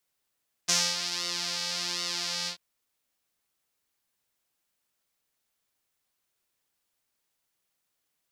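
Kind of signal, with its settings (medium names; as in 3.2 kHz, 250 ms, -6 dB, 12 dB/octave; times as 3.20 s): synth patch with pulse-width modulation F3, filter bandpass, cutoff 4.3 kHz, filter envelope 0.5 oct, attack 16 ms, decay 0.26 s, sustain -10 dB, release 0.10 s, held 1.79 s, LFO 1.3 Hz, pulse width 36%, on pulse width 15%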